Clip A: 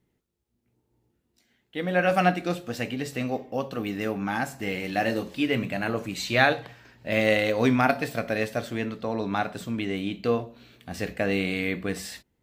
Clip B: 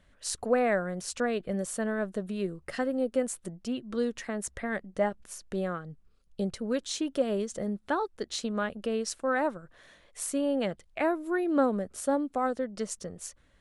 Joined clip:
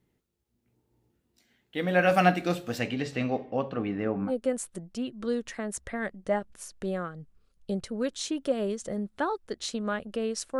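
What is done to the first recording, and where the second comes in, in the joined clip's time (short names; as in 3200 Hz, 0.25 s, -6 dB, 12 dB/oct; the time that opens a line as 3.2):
clip A
2.78–4.32 LPF 8300 Hz -> 1000 Hz
4.28 switch to clip B from 2.98 s, crossfade 0.08 s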